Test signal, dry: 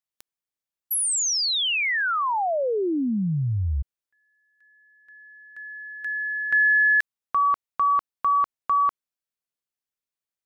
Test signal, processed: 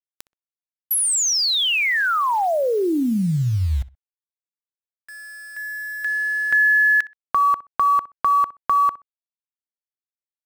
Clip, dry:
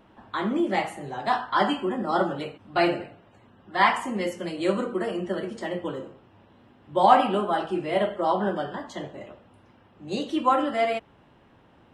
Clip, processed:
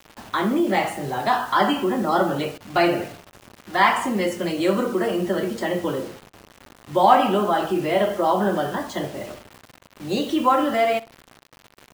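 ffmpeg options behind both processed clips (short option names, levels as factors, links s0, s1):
-filter_complex "[0:a]asplit=2[s0][s1];[s1]acompressor=threshold=0.0158:ratio=5:attack=97:release=20:knee=1:detection=rms,volume=1.41[s2];[s0][s2]amix=inputs=2:normalize=0,acrusher=bits=6:mix=0:aa=0.000001,asplit=2[s3][s4];[s4]adelay=63,lowpass=f=2800:p=1,volume=0.126,asplit=2[s5][s6];[s6]adelay=63,lowpass=f=2800:p=1,volume=0.21[s7];[s3][s5][s7]amix=inputs=3:normalize=0"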